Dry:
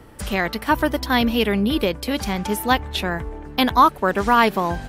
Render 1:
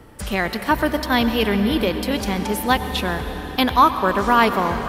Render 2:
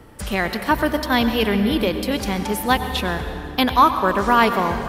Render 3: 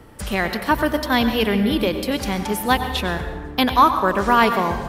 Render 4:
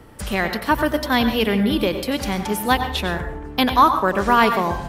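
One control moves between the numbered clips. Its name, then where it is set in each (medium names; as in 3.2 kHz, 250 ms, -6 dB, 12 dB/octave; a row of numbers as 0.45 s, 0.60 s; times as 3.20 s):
plate-style reverb, RT60: 5.3 s, 2.5 s, 1.2 s, 0.53 s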